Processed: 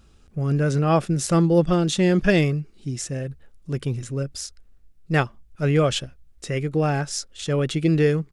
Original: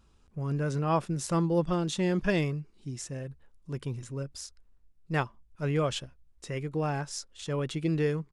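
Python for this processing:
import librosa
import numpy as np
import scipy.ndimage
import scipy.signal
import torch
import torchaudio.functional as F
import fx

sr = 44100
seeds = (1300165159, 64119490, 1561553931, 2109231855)

y = fx.peak_eq(x, sr, hz=980.0, db=-11.0, octaves=0.26)
y = y * 10.0 ** (9.0 / 20.0)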